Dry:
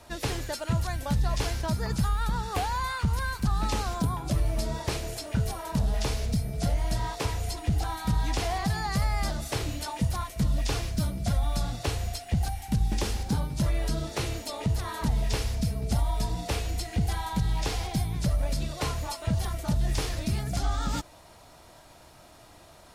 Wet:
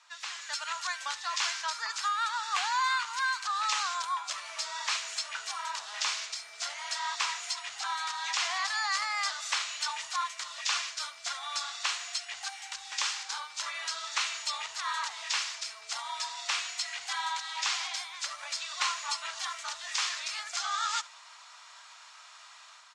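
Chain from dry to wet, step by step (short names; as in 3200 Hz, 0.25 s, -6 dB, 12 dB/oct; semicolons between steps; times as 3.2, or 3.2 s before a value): on a send: echo 70 ms -21.5 dB; on the sum: AGC gain up to 10 dB; elliptic band-pass 1100–7300 Hz, stop band 60 dB; gain -3.5 dB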